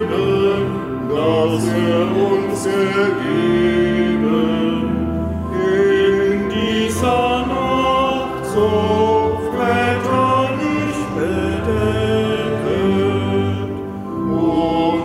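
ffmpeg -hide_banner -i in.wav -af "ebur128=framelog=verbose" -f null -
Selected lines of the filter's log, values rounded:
Integrated loudness:
  I:         -17.3 LUFS
  Threshold: -27.3 LUFS
Loudness range:
  LRA:         1.8 LU
  Threshold: -37.2 LUFS
  LRA low:   -18.4 LUFS
  LRA high:  -16.6 LUFS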